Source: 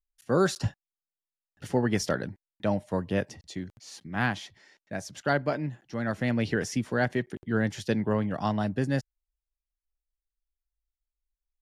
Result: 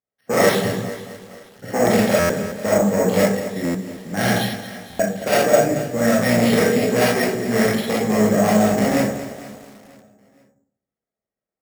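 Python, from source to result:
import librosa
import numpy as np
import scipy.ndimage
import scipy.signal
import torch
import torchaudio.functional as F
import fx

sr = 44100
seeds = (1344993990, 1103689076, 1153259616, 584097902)

p1 = fx.octave_divider(x, sr, octaves=2, level_db=-4.0)
p2 = fx.env_lowpass(p1, sr, base_hz=1100.0, full_db=-20.5)
p3 = fx.high_shelf(p2, sr, hz=2200.0, db=9.0)
p4 = fx.level_steps(p3, sr, step_db=12, at=(7.55, 8.19))
p5 = fx.fold_sine(p4, sr, drive_db=13, ceiling_db=-8.5)
p6 = fx.cabinet(p5, sr, low_hz=120.0, low_slope=24, high_hz=3100.0, hz=(140.0, 320.0, 460.0, 990.0, 1400.0, 2600.0), db=(-10, -8, 5, -10, -7, -7))
p7 = p6 + fx.echo_feedback(p6, sr, ms=469, feedback_pct=42, wet_db=-21.5, dry=0)
p8 = fx.rev_freeverb(p7, sr, rt60_s=0.61, hf_ratio=0.35, predelay_ms=5, drr_db=-6.0)
p9 = np.repeat(p8[::6], 6)[:len(p8)]
p10 = fx.buffer_glitch(p9, sr, at_s=(2.19, 3.64, 4.89), block=512, repeats=8)
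p11 = fx.echo_crushed(p10, sr, ms=224, feedback_pct=55, bits=5, wet_db=-12.5)
y = F.gain(torch.from_numpy(p11), -6.5).numpy()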